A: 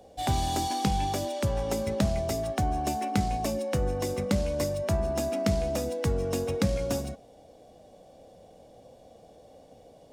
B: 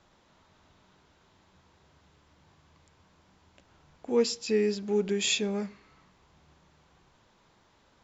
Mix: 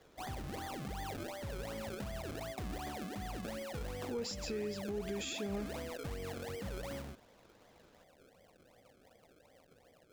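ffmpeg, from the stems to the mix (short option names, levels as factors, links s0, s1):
-filter_complex "[0:a]alimiter=limit=0.075:level=0:latency=1:release=25,acrusher=samples=32:mix=1:aa=0.000001:lfo=1:lforange=32:lforate=2.7,volume=0.266[s0];[1:a]alimiter=limit=0.0891:level=0:latency=1,volume=0.631[s1];[s0][s1]amix=inputs=2:normalize=0,alimiter=level_in=2.24:limit=0.0631:level=0:latency=1:release=153,volume=0.447"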